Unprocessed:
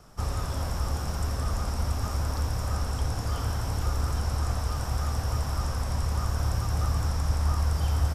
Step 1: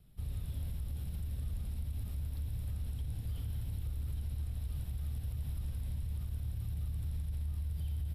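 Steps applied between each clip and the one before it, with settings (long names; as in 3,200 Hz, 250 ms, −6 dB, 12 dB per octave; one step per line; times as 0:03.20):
drawn EQ curve 140 Hz 0 dB, 1,200 Hz −25 dB, 2,100 Hz −10 dB, 3,900 Hz −3 dB, 5,900 Hz −26 dB, 11,000 Hz −1 dB
brickwall limiter −25 dBFS, peak gain reduction 10.5 dB
level −6 dB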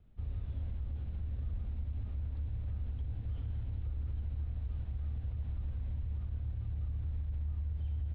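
Gaussian smoothing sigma 3.2 samples
parametric band 150 Hz −12.5 dB 0.27 octaves
level +1 dB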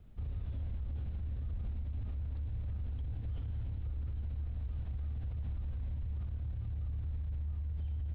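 brickwall limiter −38.5 dBFS, peak gain reduction 9 dB
level +6 dB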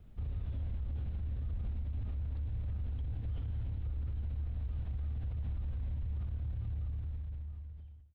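fade-out on the ending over 1.42 s
level +1 dB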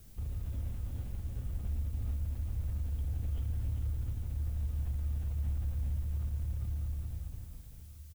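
single-tap delay 399 ms −4.5 dB
background noise blue −62 dBFS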